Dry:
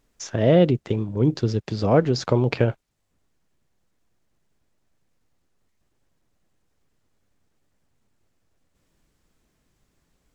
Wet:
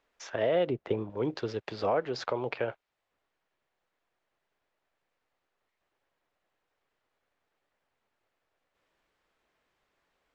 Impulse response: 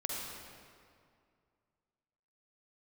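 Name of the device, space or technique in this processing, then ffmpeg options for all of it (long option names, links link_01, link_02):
DJ mixer with the lows and highs turned down: -filter_complex "[0:a]acrossover=split=440 3800:gain=0.112 1 0.141[link_01][link_02][link_03];[link_01][link_02][link_03]amix=inputs=3:normalize=0,alimiter=limit=-18dB:level=0:latency=1:release=244,asettb=1/sr,asplit=3[link_04][link_05][link_06];[link_04]atrim=end=0.674[link_07];[link_05]atrim=start=0.67:end=1.1,asetpts=PTS-STARTPTS,afade=type=in:duration=0.004:curve=qsin,afade=type=out:start_time=0.426:duration=0.004:curve=qsin,tiltshelf=frequency=970:gain=5.5[link_08];[link_06]atrim=start=1.096[link_09];[link_07][link_08]acrossfade=duration=0.004:curve1=hsin:curve2=qsin[link_10];[link_10][link_09]acrossfade=duration=0.004:curve1=qsin:curve2=hsin"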